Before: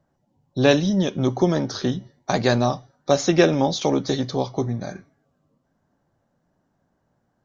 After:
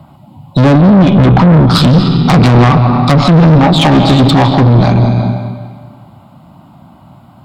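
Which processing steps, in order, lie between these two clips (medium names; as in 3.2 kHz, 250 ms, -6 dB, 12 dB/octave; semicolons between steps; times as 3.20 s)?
1.29–3.58 s: graphic EQ with 31 bands 160 Hz +10 dB, 400 Hz -4 dB, 630 Hz -6 dB, 1.25 kHz +6 dB, 5 kHz +9 dB; low-pass that closes with the level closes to 890 Hz, closed at -14 dBFS; high-pass 96 Hz 12 dB/octave; static phaser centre 1.7 kHz, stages 6; compression 5:1, threshold -23 dBFS, peak gain reduction 7.5 dB; bass shelf 130 Hz +5 dB; algorithmic reverb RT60 1.7 s, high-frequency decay 0.9×, pre-delay 105 ms, DRR 9 dB; valve stage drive 32 dB, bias 0.5; loudness maximiser +35.5 dB; trim -1 dB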